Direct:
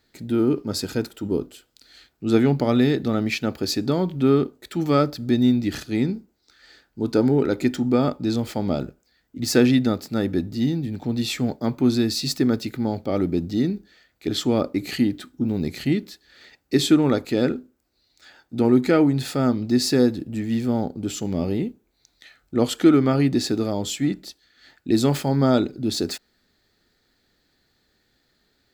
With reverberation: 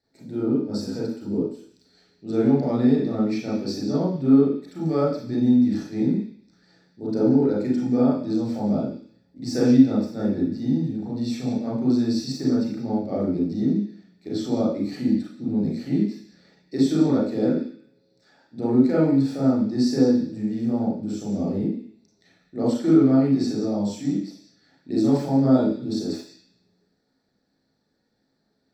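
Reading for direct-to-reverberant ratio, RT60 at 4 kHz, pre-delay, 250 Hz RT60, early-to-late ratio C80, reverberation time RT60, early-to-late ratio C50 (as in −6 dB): −7.0 dB, 0.85 s, 30 ms, 0.50 s, 7.0 dB, 0.50 s, 1.0 dB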